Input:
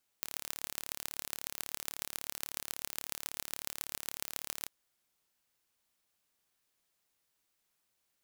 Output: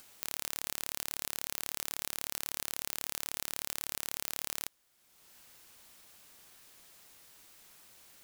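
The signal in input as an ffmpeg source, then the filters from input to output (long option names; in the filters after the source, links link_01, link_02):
-f lavfi -i "aevalsrc='0.422*eq(mod(n,1215),0)*(0.5+0.5*eq(mod(n,6075),0))':duration=4.44:sample_rate=44100"
-filter_complex "[0:a]asplit=2[link_01][link_02];[link_02]acompressor=mode=upward:threshold=-44dB:ratio=2.5,volume=2dB[link_03];[link_01][link_03]amix=inputs=2:normalize=0,alimiter=limit=-8.5dB:level=0:latency=1:release=40"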